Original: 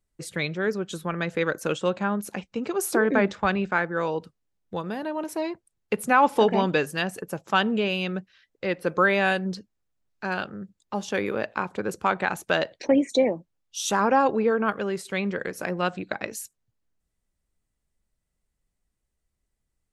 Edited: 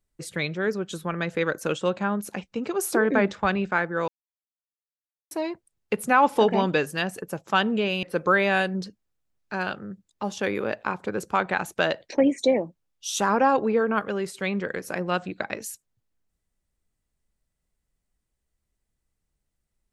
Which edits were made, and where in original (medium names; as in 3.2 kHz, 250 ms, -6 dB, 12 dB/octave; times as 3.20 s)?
4.08–5.31 s: mute
8.03–8.74 s: delete